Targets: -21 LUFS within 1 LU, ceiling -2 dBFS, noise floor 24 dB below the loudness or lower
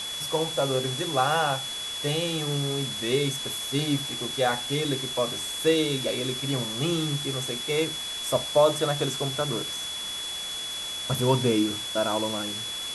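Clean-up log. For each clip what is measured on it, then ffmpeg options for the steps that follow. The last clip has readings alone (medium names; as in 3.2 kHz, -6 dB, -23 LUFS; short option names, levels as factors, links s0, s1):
steady tone 3.4 kHz; tone level -32 dBFS; noise floor -34 dBFS; noise floor target -51 dBFS; loudness -26.5 LUFS; peak level -9.0 dBFS; loudness target -21.0 LUFS
-> -af "bandreject=f=3400:w=30"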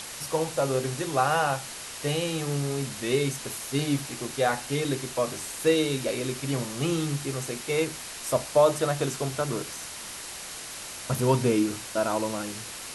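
steady tone not found; noise floor -39 dBFS; noise floor target -52 dBFS
-> -af "afftdn=nr=13:nf=-39"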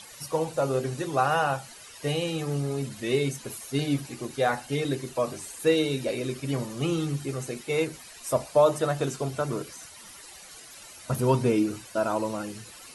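noise floor -47 dBFS; noise floor target -52 dBFS
-> -af "afftdn=nr=6:nf=-47"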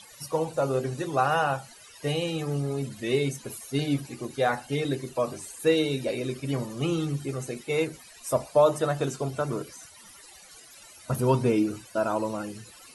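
noise floor -50 dBFS; noise floor target -52 dBFS
-> -af "afftdn=nr=6:nf=-50"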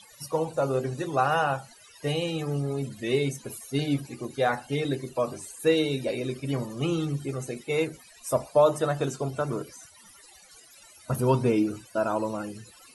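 noise floor -53 dBFS; loudness -28.0 LUFS; peak level -10.0 dBFS; loudness target -21.0 LUFS
-> -af "volume=2.24"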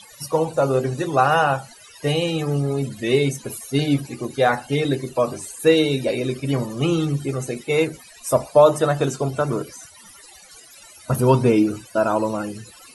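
loudness -21.0 LUFS; peak level -3.0 dBFS; noise floor -46 dBFS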